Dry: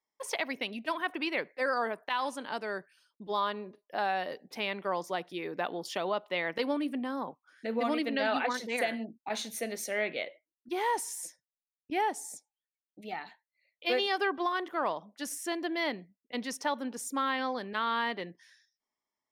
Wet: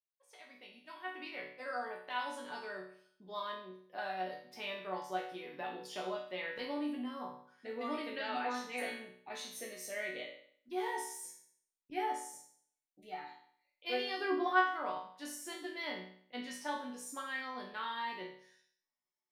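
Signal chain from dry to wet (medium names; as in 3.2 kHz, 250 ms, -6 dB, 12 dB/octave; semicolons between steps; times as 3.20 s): fade-in on the opening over 2.20 s; 14.18–14.59 s: peaking EQ 150 Hz -> 1.1 kHz +10 dB 2.6 oct; chord resonator B2 minor, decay 0.58 s; trim +10 dB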